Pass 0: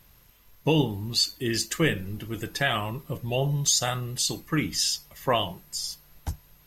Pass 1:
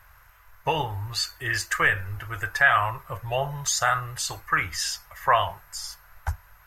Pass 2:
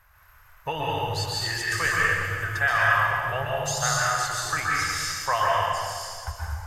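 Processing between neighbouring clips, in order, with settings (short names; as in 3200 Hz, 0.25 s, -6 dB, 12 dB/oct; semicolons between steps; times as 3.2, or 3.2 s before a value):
EQ curve 100 Hz 0 dB, 230 Hz -26 dB, 650 Hz +1 dB, 1500 Hz +12 dB, 3400 Hz -9 dB, 6700 Hz -6 dB; in parallel at 0 dB: limiter -16.5 dBFS, peak gain reduction 9.5 dB; on the sum: gain -2.5 dB
plate-style reverb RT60 2 s, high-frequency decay 0.9×, pre-delay 0.11 s, DRR -5.5 dB; gain -5.5 dB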